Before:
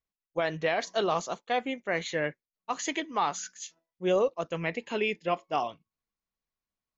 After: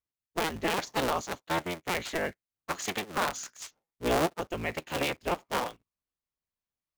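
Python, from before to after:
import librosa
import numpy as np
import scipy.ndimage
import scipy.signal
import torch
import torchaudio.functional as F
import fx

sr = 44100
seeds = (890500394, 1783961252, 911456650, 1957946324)

p1 = fx.cycle_switch(x, sr, every=3, mode='inverted')
p2 = fx.quant_companded(p1, sr, bits=4)
p3 = p1 + (p2 * librosa.db_to_amplitude(-6.5))
y = p3 * librosa.db_to_amplitude(-5.0)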